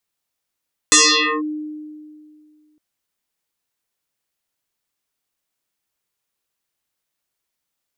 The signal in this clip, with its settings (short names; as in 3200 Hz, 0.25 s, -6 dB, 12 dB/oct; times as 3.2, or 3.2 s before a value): FM tone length 1.86 s, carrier 304 Hz, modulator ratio 2.51, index 11, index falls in 0.50 s linear, decay 2.24 s, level -7 dB